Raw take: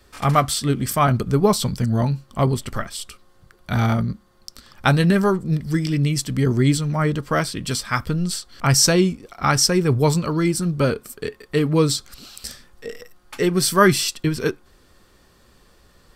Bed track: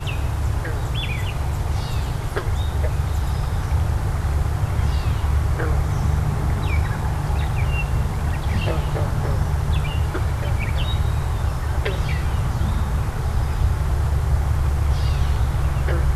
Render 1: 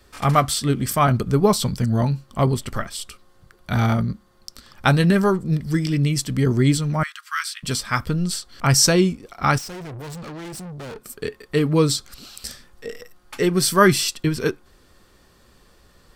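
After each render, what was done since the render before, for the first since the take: 7.03–7.63 s: steep high-pass 1.2 kHz 48 dB/octave; 9.58–11.06 s: valve stage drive 33 dB, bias 0.7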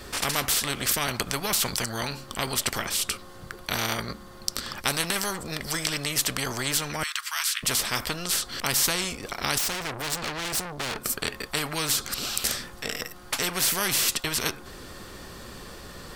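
spectrum-flattening compressor 4:1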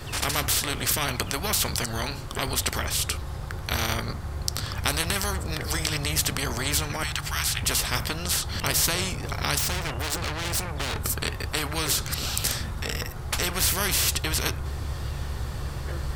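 add bed track -12 dB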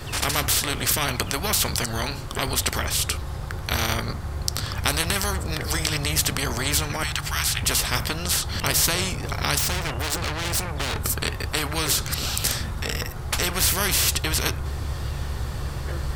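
trim +2.5 dB; peak limiter -1 dBFS, peak gain reduction 2 dB

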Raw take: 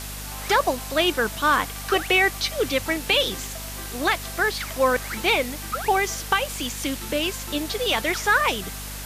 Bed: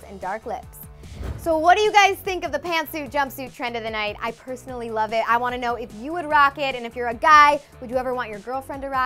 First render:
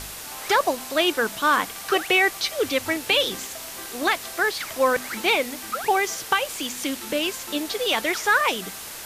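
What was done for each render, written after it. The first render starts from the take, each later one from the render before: de-hum 50 Hz, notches 5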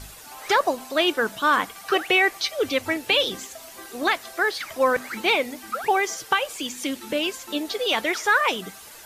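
noise reduction 10 dB, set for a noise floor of -37 dBFS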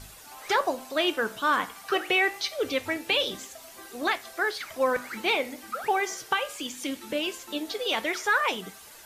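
flange 0.24 Hz, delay 8.9 ms, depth 9.1 ms, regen -80%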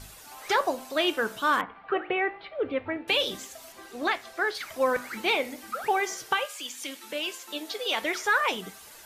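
1.61–3.08 s: Gaussian low-pass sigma 3.8 samples; 3.72–4.55 s: treble shelf 7.7 kHz -10.5 dB; 6.45–8.01 s: high-pass 1.2 kHz -> 380 Hz 6 dB/octave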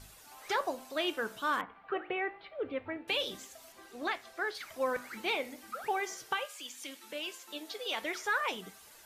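trim -7.5 dB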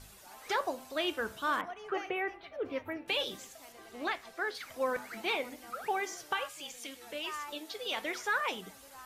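add bed -29.5 dB

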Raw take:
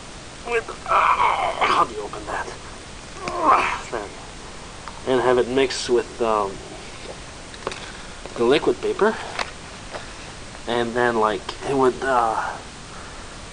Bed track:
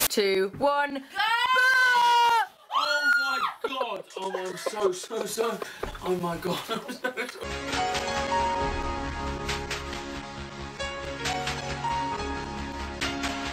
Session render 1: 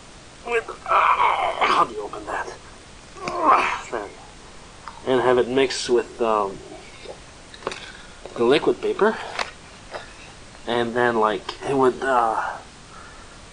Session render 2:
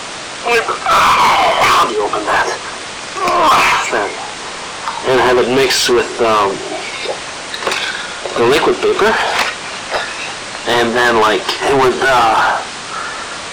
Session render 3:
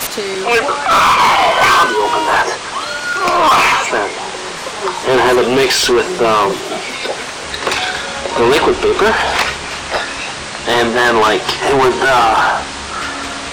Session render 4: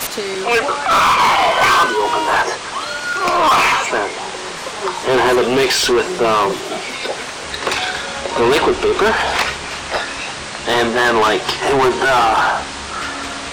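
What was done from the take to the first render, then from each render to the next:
noise print and reduce 6 dB
overdrive pedal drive 28 dB, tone 6.3 kHz, clips at -3.5 dBFS
add bed track +2.5 dB
trim -2.5 dB

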